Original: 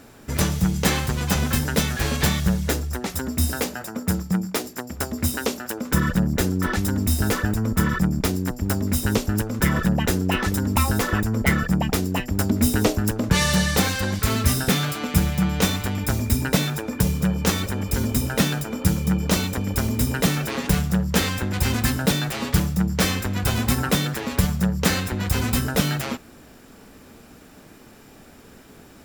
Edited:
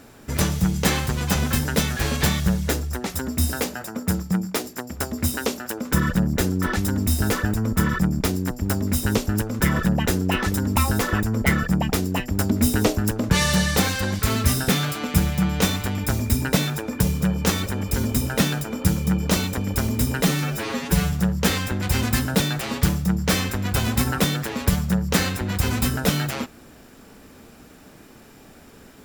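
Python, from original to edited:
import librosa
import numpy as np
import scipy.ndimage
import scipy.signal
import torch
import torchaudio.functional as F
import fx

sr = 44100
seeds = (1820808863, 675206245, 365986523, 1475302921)

y = fx.edit(x, sr, fx.stretch_span(start_s=20.25, length_s=0.58, factor=1.5), tone=tone)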